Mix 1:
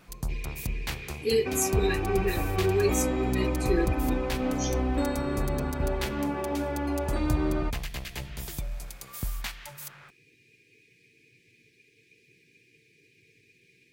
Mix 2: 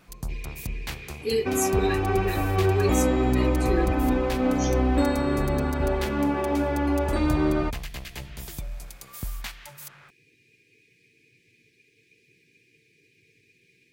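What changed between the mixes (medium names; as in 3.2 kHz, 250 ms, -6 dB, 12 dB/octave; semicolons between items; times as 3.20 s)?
second sound +6.0 dB; reverb: off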